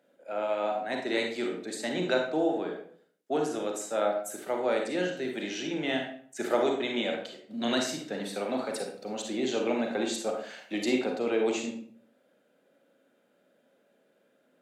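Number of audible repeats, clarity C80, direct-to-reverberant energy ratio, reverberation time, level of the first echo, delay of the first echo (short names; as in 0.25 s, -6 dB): none, 9.0 dB, 1.5 dB, 0.55 s, none, none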